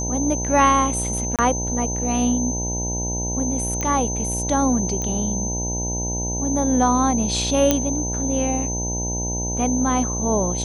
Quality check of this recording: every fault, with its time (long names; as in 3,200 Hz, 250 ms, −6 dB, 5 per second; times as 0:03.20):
mains buzz 60 Hz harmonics 16 −27 dBFS
whistle 6,200 Hz −26 dBFS
0:01.36–0:01.39: drop-out 27 ms
0:03.81: click −11 dBFS
0:05.02: click −14 dBFS
0:07.71: click −2 dBFS